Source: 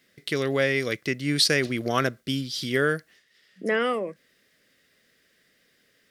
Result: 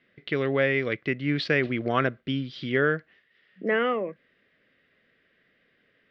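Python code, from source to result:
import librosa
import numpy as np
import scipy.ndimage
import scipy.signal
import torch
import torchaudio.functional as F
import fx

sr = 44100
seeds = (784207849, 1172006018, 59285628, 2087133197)

y = scipy.signal.sosfilt(scipy.signal.butter(4, 3000.0, 'lowpass', fs=sr, output='sos'), x)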